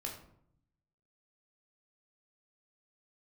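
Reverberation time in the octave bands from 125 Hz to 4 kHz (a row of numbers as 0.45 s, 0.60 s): 1.2 s, 1.0 s, 0.70 s, 0.65 s, 0.50 s, 0.35 s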